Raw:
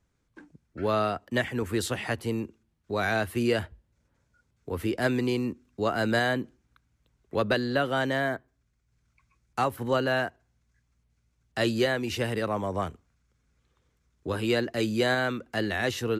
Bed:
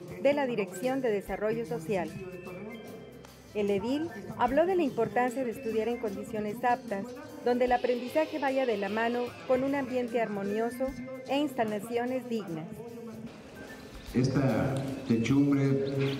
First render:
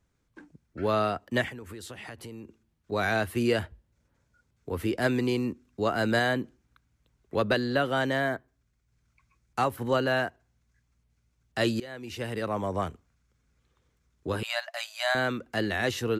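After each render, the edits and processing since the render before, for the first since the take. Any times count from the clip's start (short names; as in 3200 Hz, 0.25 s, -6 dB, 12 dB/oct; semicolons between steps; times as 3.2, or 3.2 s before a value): 1.49–2.92 compressor, threshold -39 dBFS; 11.8–12.65 fade in, from -22 dB; 14.43–15.15 brick-wall FIR high-pass 580 Hz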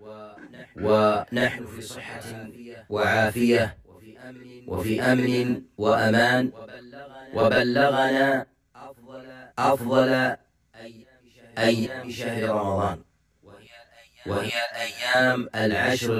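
reverse echo 0.83 s -22.5 dB; non-linear reverb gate 80 ms rising, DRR -4.5 dB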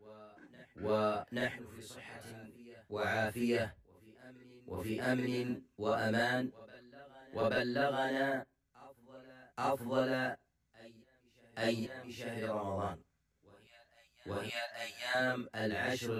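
gain -13 dB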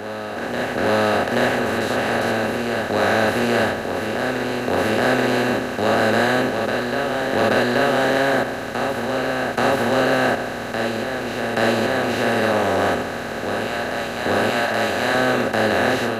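per-bin compression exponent 0.2; AGC gain up to 7.5 dB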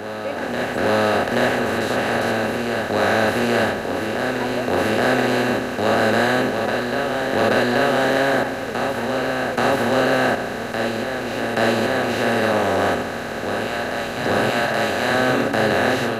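add bed -5 dB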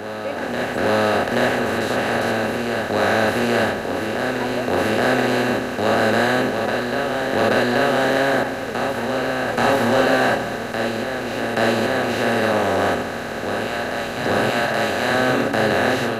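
9.45–10.57 doubler 26 ms -4.5 dB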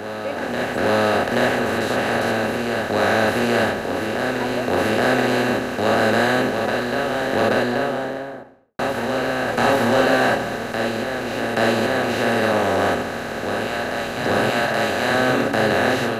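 7.26–8.79 studio fade out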